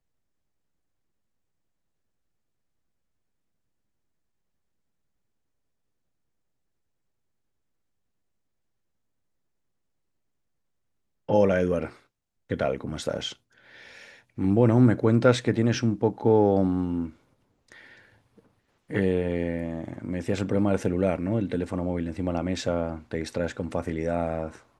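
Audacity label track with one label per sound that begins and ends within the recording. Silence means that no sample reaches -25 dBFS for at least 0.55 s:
11.290000	11.850000	sound
12.510000	13.280000	sound
14.390000	17.050000	sound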